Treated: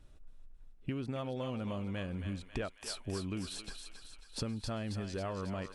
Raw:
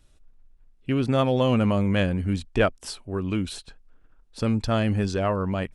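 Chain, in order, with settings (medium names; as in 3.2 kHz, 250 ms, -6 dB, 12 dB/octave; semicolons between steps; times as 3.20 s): compression 10:1, threshold -36 dBFS, peak gain reduction 20 dB; thinning echo 272 ms, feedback 65%, high-pass 920 Hz, level -6 dB; tape noise reduction on one side only decoder only; trim +1 dB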